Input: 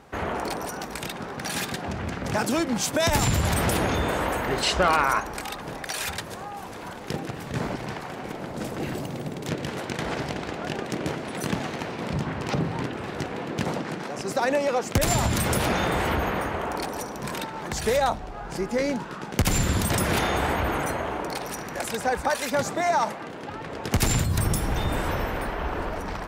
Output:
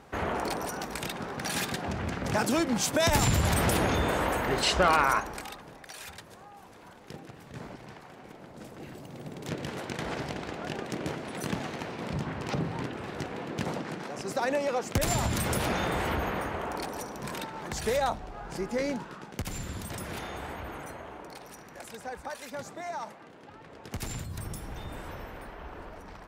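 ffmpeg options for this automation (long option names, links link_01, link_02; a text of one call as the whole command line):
ffmpeg -i in.wav -af "volume=6.5dB,afade=type=out:start_time=5.1:duration=0.59:silence=0.266073,afade=type=in:start_time=9.01:duration=0.58:silence=0.375837,afade=type=out:start_time=18.92:duration=0.54:silence=0.354813" out.wav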